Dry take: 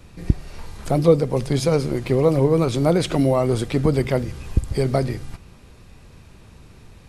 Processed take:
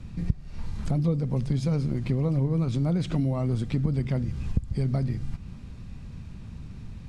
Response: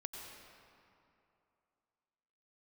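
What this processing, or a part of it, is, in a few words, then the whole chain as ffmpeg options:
jukebox: -af "lowpass=7700,lowshelf=f=290:t=q:w=1.5:g=9.5,acompressor=threshold=0.0794:ratio=3,volume=0.631"

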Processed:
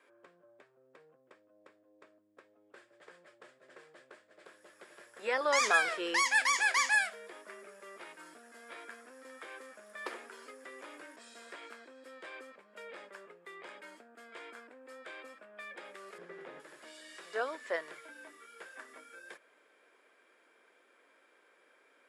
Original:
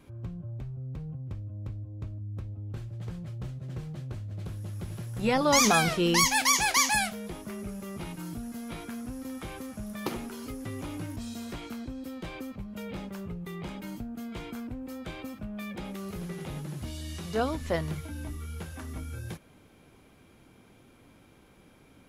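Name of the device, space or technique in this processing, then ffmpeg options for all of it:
phone speaker on a table: -filter_complex "[0:a]asettb=1/sr,asplit=3[s0][s1][s2];[s0]atrim=end=16.184[s3];[s1]atrim=start=16.18:end=16.6,asetpts=PTS-STARTPTS,afade=t=in:d=0.004:c=qsin,afade=t=out:st=0.416:d=0.004:c=qsin,aemphasis=mode=reproduction:type=riaa[s4];[s2]atrim=start=16.596[s5];[s3][s4]acrossfade=d=0.004:c1=hsin:c2=qsin[s6];[s6][s5]acrossfade=d=0.004:c1=qsin:c2=hsin,highpass=f=450:w=0.5412,highpass=f=450:w=1.3066,equalizer=f=790:t=q:w=4:g=-7,equalizer=f=1700:t=q:w=4:g=8,equalizer=f=2900:t=q:w=4:g=-4,equalizer=f=4100:t=q:w=4:g=-6,equalizer=f=6100:t=q:w=4:g=-10,lowpass=f=8700:w=0.5412,lowpass=f=8700:w=1.3066,volume=0.668"

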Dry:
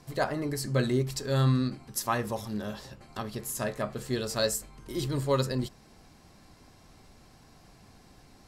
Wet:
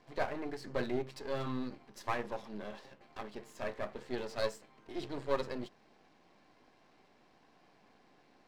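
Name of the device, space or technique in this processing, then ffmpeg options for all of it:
crystal radio: -af "highpass=280,lowpass=3000,aeval=exprs='if(lt(val(0),0),0.251*val(0),val(0))':c=same,equalizer=f=1300:t=o:w=0.26:g=-4,volume=0.841"

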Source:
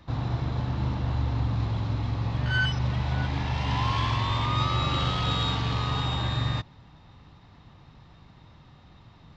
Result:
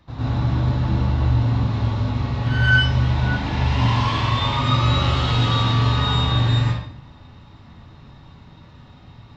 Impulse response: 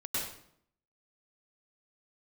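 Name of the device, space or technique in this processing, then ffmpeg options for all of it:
bathroom: -filter_complex "[1:a]atrim=start_sample=2205[s0];[0:a][s0]afir=irnorm=-1:irlink=0,volume=1.26"

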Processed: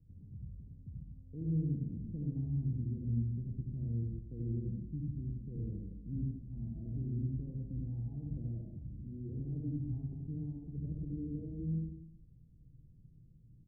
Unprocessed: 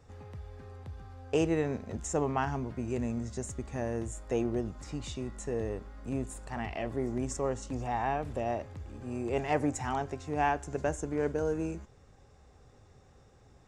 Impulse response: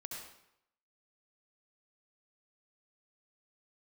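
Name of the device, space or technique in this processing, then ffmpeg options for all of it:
club heard from the street: -filter_complex "[0:a]alimiter=limit=0.0668:level=0:latency=1:release=23,lowpass=f=230:w=0.5412,lowpass=f=230:w=1.3066[s0];[1:a]atrim=start_sample=2205[s1];[s0][s1]afir=irnorm=-1:irlink=0,aecho=1:1:6.2:0.43,volume=1.5"

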